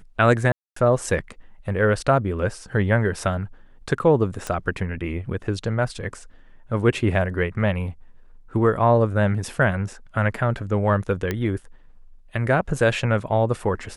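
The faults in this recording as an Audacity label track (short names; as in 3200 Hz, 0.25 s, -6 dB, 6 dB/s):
0.520000	0.760000	gap 0.244 s
4.470000	4.470000	pop -14 dBFS
11.310000	11.310000	pop -11 dBFS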